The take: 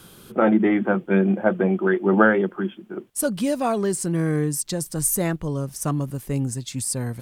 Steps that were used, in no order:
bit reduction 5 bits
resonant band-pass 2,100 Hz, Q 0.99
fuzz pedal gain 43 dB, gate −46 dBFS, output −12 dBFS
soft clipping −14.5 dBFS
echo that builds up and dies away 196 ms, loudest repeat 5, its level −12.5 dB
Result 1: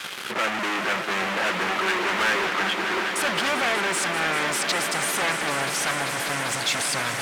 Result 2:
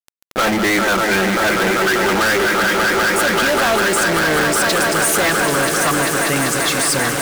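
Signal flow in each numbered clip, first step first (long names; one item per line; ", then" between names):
fuzz pedal, then echo that builds up and dies away, then bit reduction, then resonant band-pass, then soft clipping
echo that builds up and dies away, then soft clipping, then resonant band-pass, then fuzz pedal, then bit reduction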